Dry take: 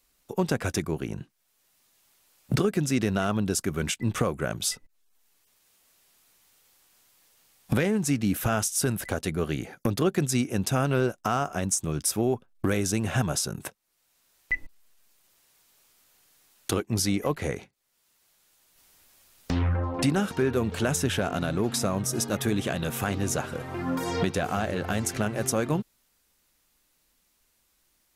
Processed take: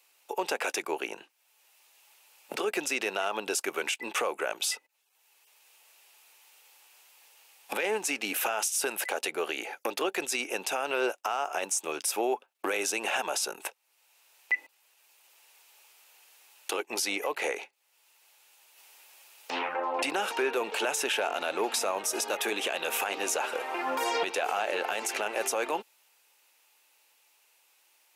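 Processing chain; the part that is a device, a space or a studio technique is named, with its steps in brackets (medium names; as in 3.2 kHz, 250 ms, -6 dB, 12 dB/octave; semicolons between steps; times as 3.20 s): laptop speaker (high-pass 420 Hz 24 dB/octave; peaking EQ 860 Hz +9 dB 0.23 oct; peaking EQ 2.6 kHz +9 dB 0.45 oct; peak limiter -22 dBFS, peak gain reduction 10 dB); trim +3 dB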